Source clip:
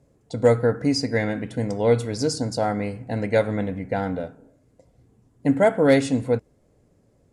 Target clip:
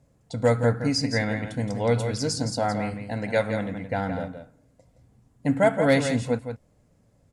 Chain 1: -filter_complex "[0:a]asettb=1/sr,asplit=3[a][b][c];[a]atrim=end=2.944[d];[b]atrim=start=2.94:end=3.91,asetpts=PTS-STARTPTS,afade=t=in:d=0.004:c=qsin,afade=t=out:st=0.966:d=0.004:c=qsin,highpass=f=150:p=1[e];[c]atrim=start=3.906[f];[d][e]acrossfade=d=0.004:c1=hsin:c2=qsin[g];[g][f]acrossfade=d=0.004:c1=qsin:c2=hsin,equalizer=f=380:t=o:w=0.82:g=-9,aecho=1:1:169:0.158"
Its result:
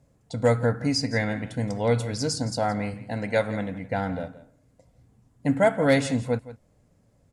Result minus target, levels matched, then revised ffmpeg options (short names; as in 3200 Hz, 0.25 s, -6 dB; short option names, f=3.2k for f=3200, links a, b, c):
echo-to-direct -8 dB
-filter_complex "[0:a]asettb=1/sr,asplit=3[a][b][c];[a]atrim=end=2.944[d];[b]atrim=start=2.94:end=3.91,asetpts=PTS-STARTPTS,afade=t=in:d=0.004:c=qsin,afade=t=out:st=0.966:d=0.004:c=qsin,highpass=f=150:p=1[e];[c]atrim=start=3.906[f];[d][e]acrossfade=d=0.004:c1=hsin:c2=qsin[g];[g][f]acrossfade=d=0.004:c1=qsin:c2=hsin,equalizer=f=380:t=o:w=0.82:g=-9,aecho=1:1:169:0.398"